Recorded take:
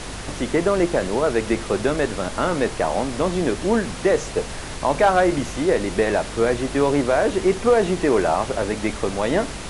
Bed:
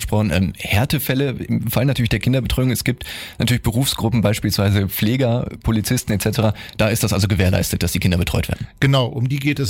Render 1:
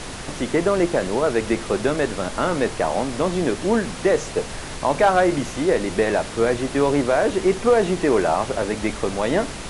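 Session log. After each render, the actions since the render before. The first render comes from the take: de-hum 50 Hz, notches 2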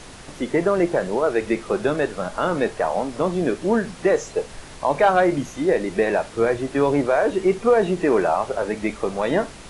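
noise print and reduce 8 dB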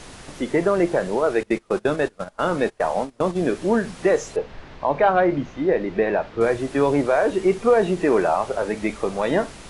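1.43–3.39 s: gate -26 dBFS, range -23 dB; 4.36–6.41 s: distance through air 230 m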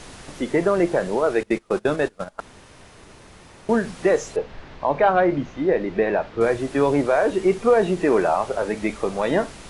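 2.40–3.69 s: room tone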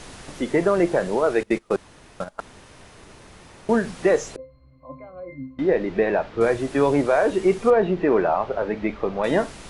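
1.76–2.20 s: room tone; 4.36–5.59 s: pitch-class resonator C, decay 0.36 s; 7.70–9.24 s: distance through air 250 m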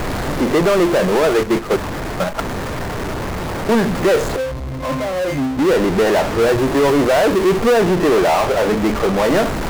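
median filter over 15 samples; power-law waveshaper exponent 0.35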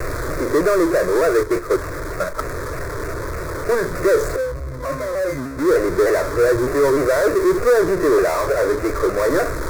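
static phaser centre 800 Hz, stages 6; vibrato with a chosen wave saw down 3.3 Hz, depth 100 cents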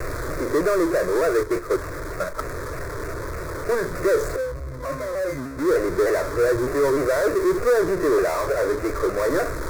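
trim -4 dB

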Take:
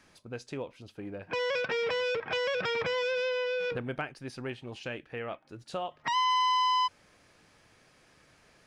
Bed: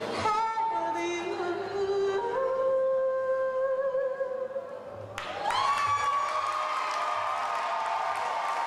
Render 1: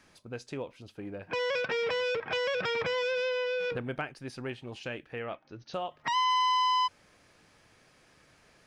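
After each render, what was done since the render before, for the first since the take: 5.24–5.74 s: brick-wall FIR low-pass 6.6 kHz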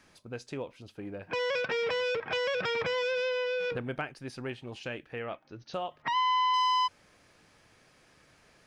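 6.02–6.54 s: low-pass 3.5 kHz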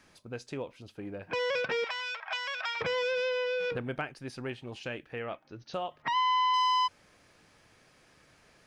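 1.84–2.81 s: Chebyshev high-pass 660 Hz, order 5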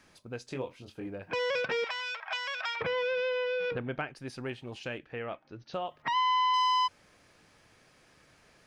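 0.45–1.07 s: doubling 23 ms -4.5 dB; 2.75–4.14 s: low-pass 3 kHz -> 4.8 kHz; 4.98–5.87 s: distance through air 73 m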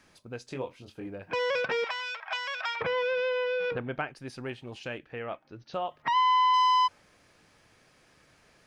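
dynamic bell 930 Hz, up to +4 dB, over -38 dBFS, Q 0.75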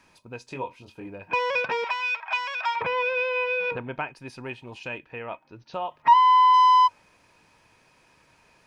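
small resonant body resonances 950/2500 Hz, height 14 dB, ringing for 45 ms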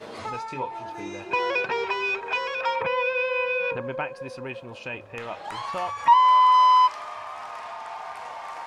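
add bed -6.5 dB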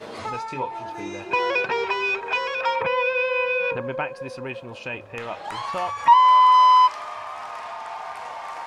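trim +2.5 dB

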